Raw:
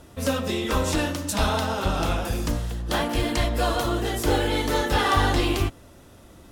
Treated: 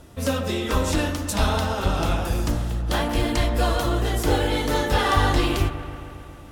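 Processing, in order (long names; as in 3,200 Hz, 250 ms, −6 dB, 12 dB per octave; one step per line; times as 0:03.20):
low-shelf EQ 130 Hz +3.5 dB
delay with a low-pass on its return 136 ms, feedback 74%, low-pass 2,300 Hz, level −12.5 dB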